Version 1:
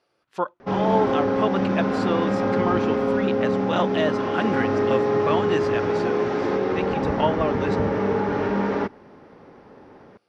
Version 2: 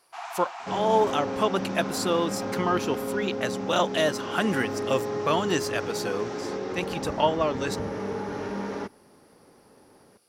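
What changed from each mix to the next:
first sound: unmuted; second sound -9.0 dB; master: remove low-pass 3 kHz 12 dB/octave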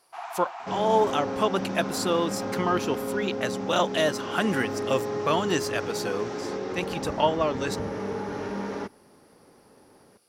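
first sound: add tilt EQ -2.5 dB/octave

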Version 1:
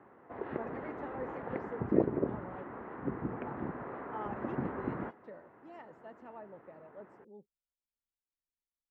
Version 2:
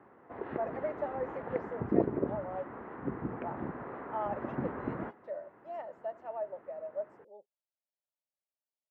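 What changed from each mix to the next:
speech: add resonant high-pass 620 Hz, resonance Q 6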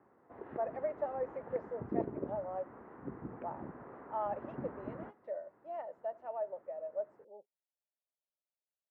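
background -7.5 dB; master: add treble shelf 2.8 kHz -11 dB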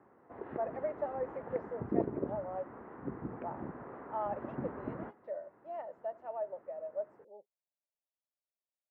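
background +3.5 dB

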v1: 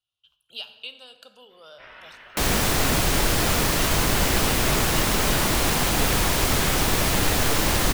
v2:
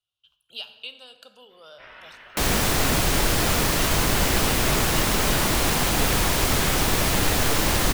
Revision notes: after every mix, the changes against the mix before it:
no change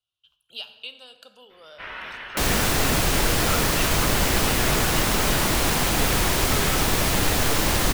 first sound +10.0 dB

